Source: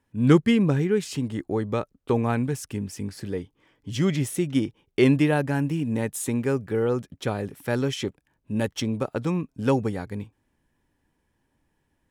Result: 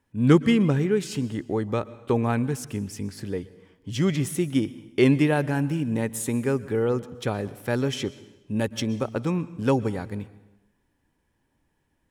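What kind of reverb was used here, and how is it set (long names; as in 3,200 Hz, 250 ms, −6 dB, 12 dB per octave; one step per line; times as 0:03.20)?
dense smooth reverb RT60 1 s, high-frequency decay 0.9×, pre-delay 105 ms, DRR 17.5 dB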